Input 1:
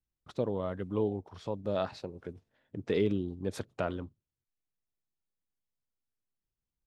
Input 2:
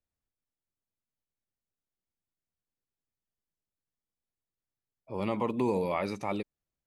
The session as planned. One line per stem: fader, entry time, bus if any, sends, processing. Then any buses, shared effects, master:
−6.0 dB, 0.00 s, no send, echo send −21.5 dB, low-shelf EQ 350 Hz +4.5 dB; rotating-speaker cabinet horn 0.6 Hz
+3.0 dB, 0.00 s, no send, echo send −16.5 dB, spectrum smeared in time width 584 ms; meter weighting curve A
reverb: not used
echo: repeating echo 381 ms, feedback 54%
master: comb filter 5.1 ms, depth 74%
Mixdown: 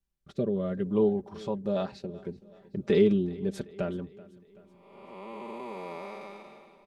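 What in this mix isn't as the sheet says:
stem 1 −6.0 dB → +2.0 dB
stem 2 +3.0 dB → −4.0 dB

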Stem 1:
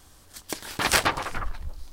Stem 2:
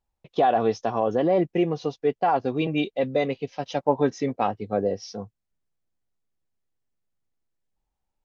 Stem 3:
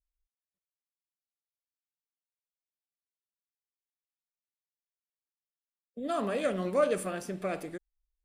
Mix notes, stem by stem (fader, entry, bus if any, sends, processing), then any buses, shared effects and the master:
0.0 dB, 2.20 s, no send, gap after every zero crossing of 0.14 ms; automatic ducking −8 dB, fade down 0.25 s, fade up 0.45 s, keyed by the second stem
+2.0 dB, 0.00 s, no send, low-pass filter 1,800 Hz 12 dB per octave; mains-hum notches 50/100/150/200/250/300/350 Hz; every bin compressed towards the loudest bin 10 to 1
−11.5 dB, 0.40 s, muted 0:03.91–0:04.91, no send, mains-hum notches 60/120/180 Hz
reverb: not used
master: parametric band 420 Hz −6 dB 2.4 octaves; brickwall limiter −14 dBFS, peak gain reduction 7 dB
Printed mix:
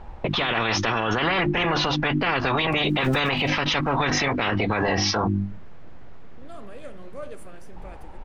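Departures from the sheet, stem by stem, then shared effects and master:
stem 1 0.0 dB → −6.5 dB
stem 2 +2.0 dB → +13.0 dB
master: missing parametric band 420 Hz −6 dB 2.4 octaves

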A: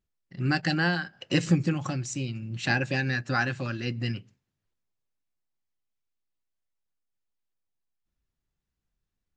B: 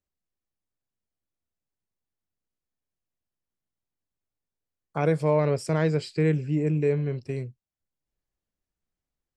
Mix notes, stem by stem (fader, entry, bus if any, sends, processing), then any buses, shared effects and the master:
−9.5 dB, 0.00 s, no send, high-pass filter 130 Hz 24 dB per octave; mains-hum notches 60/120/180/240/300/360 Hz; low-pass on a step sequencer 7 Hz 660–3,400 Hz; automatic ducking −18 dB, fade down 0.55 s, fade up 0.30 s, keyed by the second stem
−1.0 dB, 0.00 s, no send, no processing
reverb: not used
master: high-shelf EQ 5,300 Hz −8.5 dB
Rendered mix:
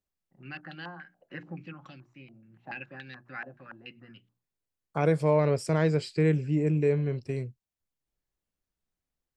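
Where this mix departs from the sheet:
stem A −9.5 dB → −17.5 dB
master: missing high-shelf EQ 5,300 Hz −8.5 dB

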